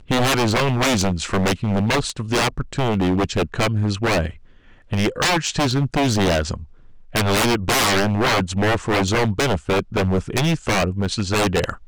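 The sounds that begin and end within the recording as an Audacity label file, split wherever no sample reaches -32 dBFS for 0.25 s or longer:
4.920000	6.640000	sound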